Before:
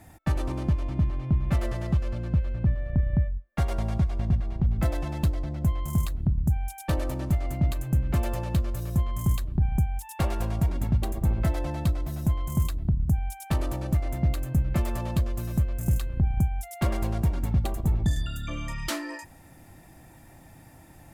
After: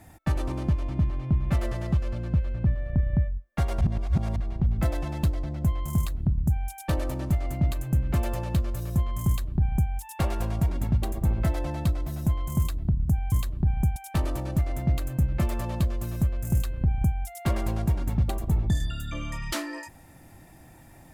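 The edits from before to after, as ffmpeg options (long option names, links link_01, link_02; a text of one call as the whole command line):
ffmpeg -i in.wav -filter_complex "[0:a]asplit=5[link_01][link_02][link_03][link_04][link_05];[link_01]atrim=end=3.812[link_06];[link_02]atrim=start=3.808:end=4.362,asetpts=PTS-STARTPTS,areverse[link_07];[link_03]atrim=start=4.358:end=13.322[link_08];[link_04]atrim=start=9.268:end=9.912[link_09];[link_05]atrim=start=13.318[link_10];[link_06][link_07]acrossfade=duration=0.004:curve1=hsin:curve2=hsin[link_11];[link_11][link_08]acrossfade=duration=0.004:curve1=hsin:curve2=hsin[link_12];[link_12][link_09]acrossfade=duration=0.004:curve1=hsin:curve2=hsin[link_13];[link_13][link_10]acrossfade=duration=0.004:curve1=hsin:curve2=hsin" out.wav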